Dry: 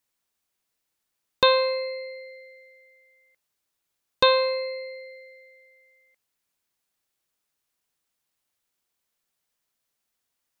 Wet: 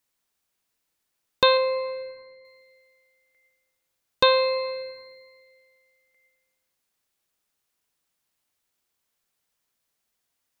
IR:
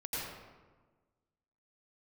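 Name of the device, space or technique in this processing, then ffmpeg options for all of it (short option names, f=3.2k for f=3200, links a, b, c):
ducked reverb: -filter_complex "[0:a]asplit=3[a][b][c];[1:a]atrim=start_sample=2205[d];[b][d]afir=irnorm=-1:irlink=0[e];[c]apad=whole_len=467491[f];[e][f]sidechaincompress=threshold=-34dB:ratio=8:attack=16:release=241,volume=-10dB[g];[a][g]amix=inputs=2:normalize=0,asettb=1/sr,asplit=3[h][i][j];[h]atrim=end=1.574[k];[i]atrim=start=1.57:end=2.45,asetpts=PTS-STARTPTS,afade=t=in:d=0.004:c=qsin,afade=t=out:st=0.876:d=0.004:c=qsin,aemphasis=mode=reproduction:type=75kf[l];[j]atrim=start=2.446[m];[k][l]acrossfade=d=0.004:c1=hsin:c2=qsin[n];[n][m]acrossfade=d=0.004:c1=qsin:c2=hsin"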